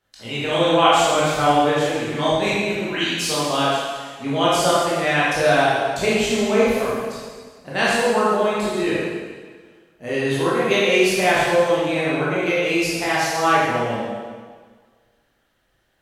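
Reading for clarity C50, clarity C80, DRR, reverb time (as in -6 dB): -3.5 dB, 0.0 dB, -9.0 dB, 1.6 s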